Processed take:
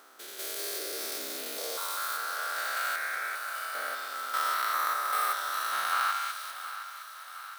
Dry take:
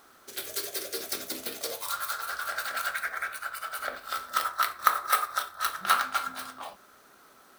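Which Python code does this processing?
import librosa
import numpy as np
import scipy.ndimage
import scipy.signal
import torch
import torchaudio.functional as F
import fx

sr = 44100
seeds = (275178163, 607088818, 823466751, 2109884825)

y = fx.spec_steps(x, sr, hold_ms=200)
y = fx.filter_sweep_highpass(y, sr, from_hz=340.0, to_hz=3400.0, start_s=5.71, end_s=6.64, q=0.78)
y = fx.echo_thinned(y, sr, ms=715, feedback_pct=66, hz=510.0, wet_db=-12)
y = y * librosa.db_to_amplitude(2.5)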